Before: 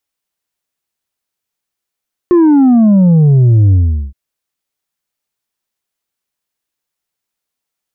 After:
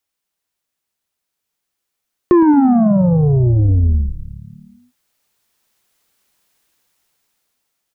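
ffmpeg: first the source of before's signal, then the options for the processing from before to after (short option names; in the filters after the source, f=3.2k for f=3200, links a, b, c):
-f lavfi -i "aevalsrc='0.562*clip((1.82-t)/0.41,0,1)*tanh(1.58*sin(2*PI*360*1.82/log(65/360)*(exp(log(65/360)*t/1.82)-1)))/tanh(1.58)':d=1.82:s=44100"
-filter_complex "[0:a]acrossover=split=450[a][b];[a]acompressor=threshold=-17dB:ratio=6[c];[c][b]amix=inputs=2:normalize=0,asplit=8[d][e][f][g][h][i][j][k];[e]adelay=112,afreqshift=-45,volume=-13.5dB[l];[f]adelay=224,afreqshift=-90,volume=-17.7dB[m];[g]adelay=336,afreqshift=-135,volume=-21.8dB[n];[h]adelay=448,afreqshift=-180,volume=-26dB[o];[i]adelay=560,afreqshift=-225,volume=-30.1dB[p];[j]adelay=672,afreqshift=-270,volume=-34.3dB[q];[k]adelay=784,afreqshift=-315,volume=-38.4dB[r];[d][l][m][n][o][p][q][r]amix=inputs=8:normalize=0,dynaudnorm=f=200:g=17:m=15.5dB"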